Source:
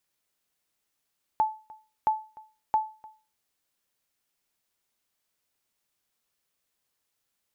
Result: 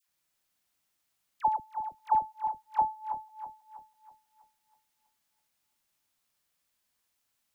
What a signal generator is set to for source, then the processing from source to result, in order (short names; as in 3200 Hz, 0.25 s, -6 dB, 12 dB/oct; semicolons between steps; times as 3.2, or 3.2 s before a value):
sonar ping 869 Hz, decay 0.34 s, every 0.67 s, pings 3, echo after 0.30 s, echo -23 dB -16 dBFS
regenerating reverse delay 0.162 s, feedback 66%, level -7 dB; bell 440 Hz -6 dB 0.58 oct; dispersion lows, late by 83 ms, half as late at 1000 Hz